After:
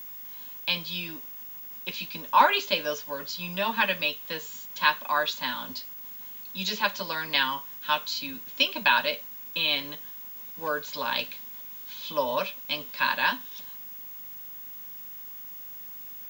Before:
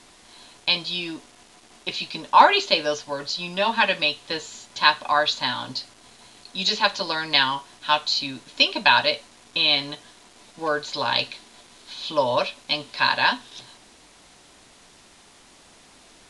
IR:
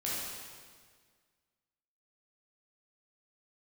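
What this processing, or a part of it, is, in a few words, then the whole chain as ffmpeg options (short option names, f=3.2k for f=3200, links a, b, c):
old television with a line whistle: -af "highpass=f=170:w=0.5412,highpass=f=170:w=1.3066,equalizer=f=170:t=q:w=4:g=6,equalizer=f=350:t=q:w=4:g=-9,equalizer=f=740:t=q:w=4:g=-8,equalizer=f=4.2k:t=q:w=4:g=-7,lowpass=f=8.2k:w=0.5412,lowpass=f=8.2k:w=1.3066,aeval=exprs='val(0)+0.0178*sin(2*PI*15625*n/s)':c=same,volume=-3.5dB"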